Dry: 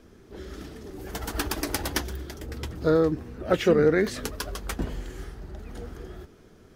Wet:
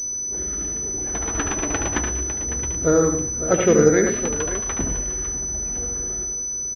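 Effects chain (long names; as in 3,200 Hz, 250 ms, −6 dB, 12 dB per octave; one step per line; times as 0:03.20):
multi-tap delay 73/109/198/553 ms −6/−10/−18.5/−12.5 dB
switching amplifier with a slow clock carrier 6,000 Hz
level +3.5 dB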